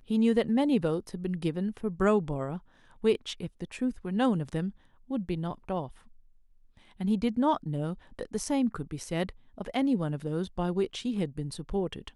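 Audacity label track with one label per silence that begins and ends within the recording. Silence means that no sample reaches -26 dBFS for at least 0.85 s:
5.800000	7.010000	silence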